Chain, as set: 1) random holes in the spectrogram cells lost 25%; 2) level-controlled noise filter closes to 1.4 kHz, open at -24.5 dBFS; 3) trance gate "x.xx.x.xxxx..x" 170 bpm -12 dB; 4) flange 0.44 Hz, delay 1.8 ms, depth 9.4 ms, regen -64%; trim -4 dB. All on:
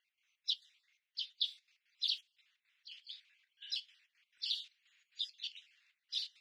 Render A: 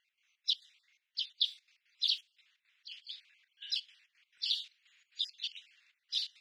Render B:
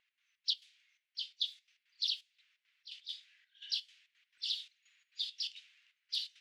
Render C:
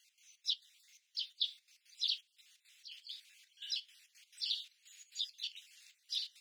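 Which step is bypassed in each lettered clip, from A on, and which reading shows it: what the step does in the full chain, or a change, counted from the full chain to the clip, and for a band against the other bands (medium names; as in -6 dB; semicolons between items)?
4, loudness change +4.0 LU; 1, momentary loudness spread change -2 LU; 2, momentary loudness spread change +1 LU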